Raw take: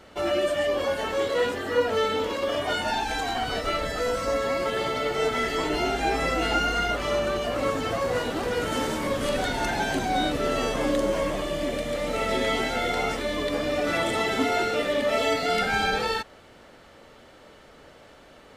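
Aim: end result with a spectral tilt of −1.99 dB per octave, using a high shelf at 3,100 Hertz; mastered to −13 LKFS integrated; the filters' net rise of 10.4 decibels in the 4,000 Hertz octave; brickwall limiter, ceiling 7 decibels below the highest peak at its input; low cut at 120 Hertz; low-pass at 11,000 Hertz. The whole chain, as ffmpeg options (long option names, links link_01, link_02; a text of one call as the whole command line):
ffmpeg -i in.wav -af "highpass=120,lowpass=11000,highshelf=frequency=3100:gain=6,equalizer=frequency=4000:width_type=o:gain=9,volume=10.5dB,alimiter=limit=-4dB:level=0:latency=1" out.wav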